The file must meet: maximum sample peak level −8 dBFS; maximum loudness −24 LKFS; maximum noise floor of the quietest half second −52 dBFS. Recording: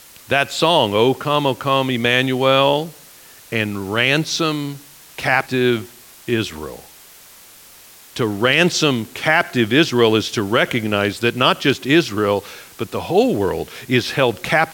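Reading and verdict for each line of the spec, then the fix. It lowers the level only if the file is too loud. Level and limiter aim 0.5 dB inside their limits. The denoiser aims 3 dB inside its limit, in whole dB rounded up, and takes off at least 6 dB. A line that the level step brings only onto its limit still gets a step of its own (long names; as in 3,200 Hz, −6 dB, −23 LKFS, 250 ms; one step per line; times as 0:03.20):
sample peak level −1.5 dBFS: out of spec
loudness −17.5 LKFS: out of spec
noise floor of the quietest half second −44 dBFS: out of spec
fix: broadband denoise 6 dB, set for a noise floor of −44 dBFS
level −7 dB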